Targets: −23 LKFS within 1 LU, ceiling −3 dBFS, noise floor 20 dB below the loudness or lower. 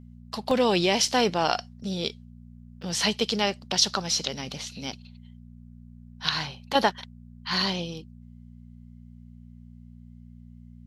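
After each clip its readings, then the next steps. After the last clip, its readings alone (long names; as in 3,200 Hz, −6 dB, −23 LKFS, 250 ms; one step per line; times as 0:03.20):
number of dropouts 3; longest dropout 2.4 ms; mains hum 60 Hz; hum harmonics up to 240 Hz; level of the hum −44 dBFS; integrated loudness −26.0 LKFS; sample peak −5.0 dBFS; target loudness −23.0 LKFS
→ repair the gap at 0:00.51/0:01.08/0:02.82, 2.4 ms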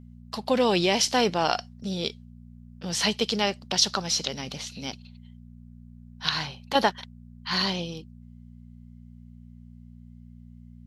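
number of dropouts 0; mains hum 60 Hz; hum harmonics up to 240 Hz; level of the hum −44 dBFS
→ hum removal 60 Hz, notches 4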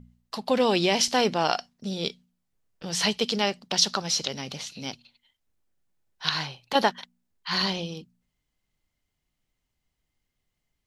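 mains hum none found; integrated loudness −26.0 LKFS; sample peak −5.0 dBFS; target loudness −23.0 LKFS
→ level +3 dB
brickwall limiter −3 dBFS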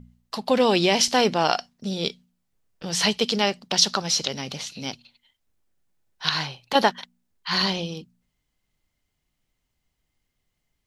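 integrated loudness −23.0 LKFS; sample peak −3.0 dBFS; background noise floor −78 dBFS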